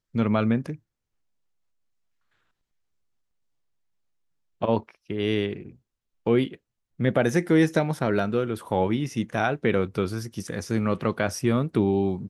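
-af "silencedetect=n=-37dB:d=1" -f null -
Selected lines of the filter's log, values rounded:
silence_start: 0.75
silence_end: 4.62 | silence_duration: 3.86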